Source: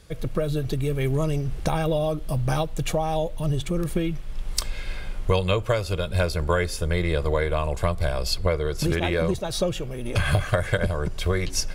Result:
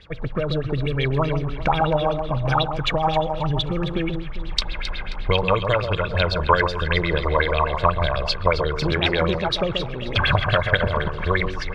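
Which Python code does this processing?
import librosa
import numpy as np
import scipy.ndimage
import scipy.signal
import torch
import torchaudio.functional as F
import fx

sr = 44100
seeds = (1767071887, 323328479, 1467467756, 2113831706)

y = fx.filter_lfo_lowpass(x, sr, shape='sine', hz=8.1, low_hz=870.0, high_hz=4100.0, q=7.1)
y = fx.echo_alternate(y, sr, ms=133, hz=1100.0, feedback_pct=60, wet_db=-6.5)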